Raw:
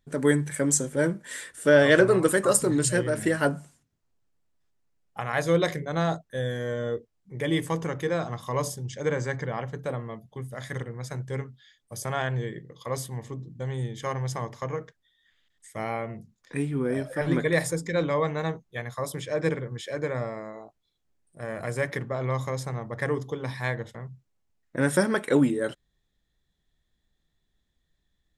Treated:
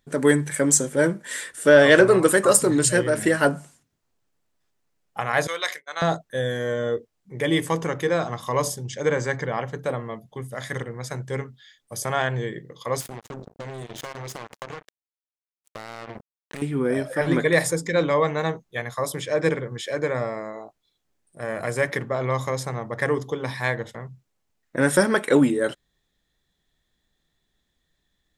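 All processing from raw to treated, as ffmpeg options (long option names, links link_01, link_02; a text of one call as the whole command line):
ffmpeg -i in.wav -filter_complex "[0:a]asettb=1/sr,asplit=3[link_01][link_02][link_03];[link_01]atrim=end=5.474[link_04];[link_02]atrim=start=5.47:end=6.02,asetpts=PTS-STARTPTS,afade=type=in:duration=0.004:curve=qsin,afade=type=out:start_time=0.546:duration=0.004:curve=qsin,highpass=1200,agate=range=-33dB:threshold=-42dB:ratio=3:release=100:detection=peak[link_05];[link_03]atrim=start=6.016[link_06];[link_04][link_05]acrossfade=duration=0.004:curve1=hsin:curve2=qsin[link_07];[link_07][link_06]acrossfade=duration=0.004:curve1=qsin:curve2=hsin,asettb=1/sr,asplit=3[link_08][link_09][link_10];[link_08]atrim=end=13.004[link_11];[link_09]atrim=start=13:end=16.62,asetpts=PTS-STARTPTS,afade=type=in:duration=0.004:curve=qsin,afade=type=out:start_time=3.616:duration=0.004:curve=qsin,acompressor=threshold=-35dB:ratio=16:attack=3.2:release=140:knee=1:detection=peak,acrusher=bits=5:mix=0:aa=0.5[link_12];[link_10]atrim=start=16.616[link_13];[link_11][link_12]acrossfade=duration=0.004:curve1=hsin:curve2=qsin[link_14];[link_14][link_13]acrossfade=duration=0.004:curve1=qsin:curve2=hsin,lowshelf=frequency=170:gain=-8,acontrast=49" out.wav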